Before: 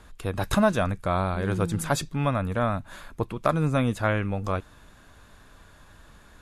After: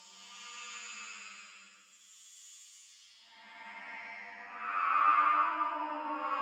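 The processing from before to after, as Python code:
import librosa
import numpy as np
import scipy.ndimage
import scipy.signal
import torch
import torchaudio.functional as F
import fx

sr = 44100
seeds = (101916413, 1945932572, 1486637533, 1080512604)

y = fx.pitch_heads(x, sr, semitones=12.0)
y = fx.peak_eq(y, sr, hz=400.0, db=-13.0, octaves=0.48)
y = fx.paulstretch(y, sr, seeds[0], factor=5.1, window_s=0.25, from_s=2.48)
y = fx.echo_alternate(y, sr, ms=140, hz=1900.0, feedback_pct=53, wet_db=-5.5)
y = fx.filter_sweep_bandpass(y, sr, from_hz=6800.0, to_hz=1200.0, start_s=2.8, end_s=4.92, q=3.0)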